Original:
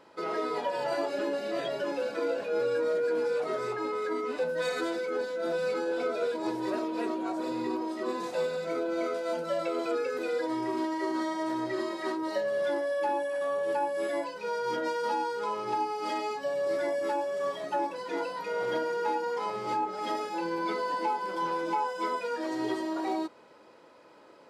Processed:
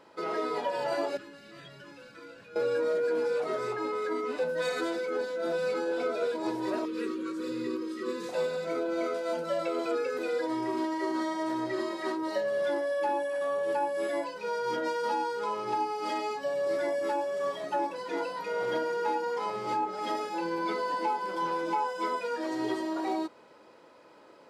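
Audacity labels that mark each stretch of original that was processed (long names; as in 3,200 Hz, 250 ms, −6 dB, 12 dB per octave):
1.170000	2.560000	drawn EQ curve 140 Hz 0 dB, 210 Hz −11 dB, 660 Hz −24 dB, 1,300 Hz −10 dB
6.850000	8.290000	elliptic band-stop filter 520–1,100 Hz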